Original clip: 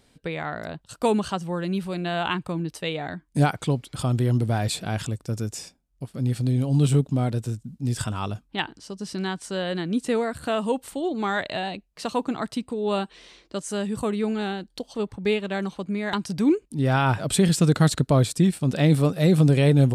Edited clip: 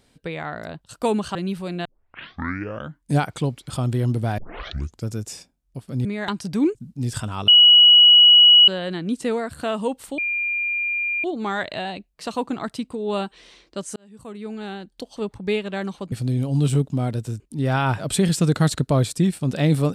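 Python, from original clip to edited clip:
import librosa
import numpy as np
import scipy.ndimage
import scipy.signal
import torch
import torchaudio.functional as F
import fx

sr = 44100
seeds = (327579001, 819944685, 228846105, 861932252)

y = fx.edit(x, sr, fx.cut(start_s=1.35, length_s=0.26),
    fx.tape_start(start_s=2.11, length_s=1.19),
    fx.tape_start(start_s=4.64, length_s=0.68),
    fx.swap(start_s=6.31, length_s=1.28, other_s=15.9, other_length_s=0.7),
    fx.bleep(start_s=8.32, length_s=1.2, hz=2920.0, db=-7.5),
    fx.insert_tone(at_s=11.02, length_s=1.06, hz=2400.0, db=-21.0),
    fx.fade_in_span(start_s=13.74, length_s=1.22), tone=tone)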